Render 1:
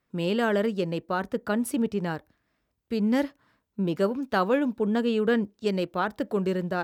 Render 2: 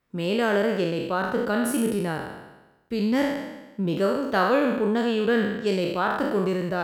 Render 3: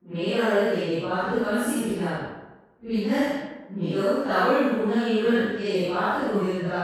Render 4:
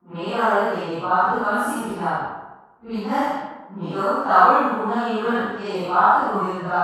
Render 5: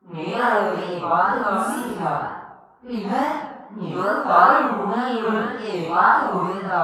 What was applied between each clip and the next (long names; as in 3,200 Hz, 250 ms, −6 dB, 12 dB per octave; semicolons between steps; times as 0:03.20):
peak hold with a decay on every bin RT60 1.09 s
random phases in long frames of 200 ms; low-pass that shuts in the quiet parts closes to 1,200 Hz, open at −20 dBFS
flat-topped bell 1,000 Hz +14 dB 1.2 octaves; level −2 dB
tape wow and flutter 140 cents